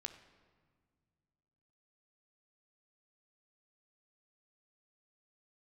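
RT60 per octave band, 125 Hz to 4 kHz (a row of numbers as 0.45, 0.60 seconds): 2.9, 2.6, 1.9, 1.7, 1.4, 1.1 seconds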